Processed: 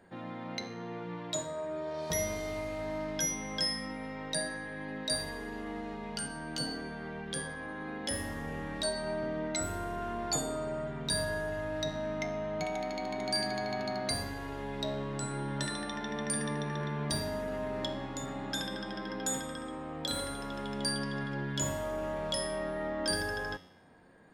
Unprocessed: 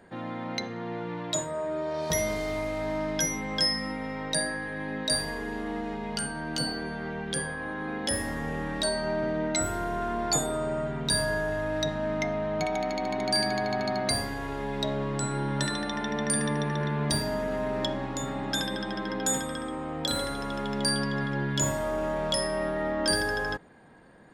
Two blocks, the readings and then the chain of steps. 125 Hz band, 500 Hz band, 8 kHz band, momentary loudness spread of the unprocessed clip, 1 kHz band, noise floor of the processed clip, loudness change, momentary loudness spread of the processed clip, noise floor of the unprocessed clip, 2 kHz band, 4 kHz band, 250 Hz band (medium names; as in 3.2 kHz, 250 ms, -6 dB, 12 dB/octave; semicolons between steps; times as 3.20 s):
-6.0 dB, -6.0 dB, -5.5 dB, 8 LU, -6.5 dB, -42 dBFS, -6.0 dB, 8 LU, -36 dBFS, -6.5 dB, -5.5 dB, -6.0 dB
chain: feedback comb 90 Hz, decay 0.83 s, harmonics all, mix 70%; trim +3 dB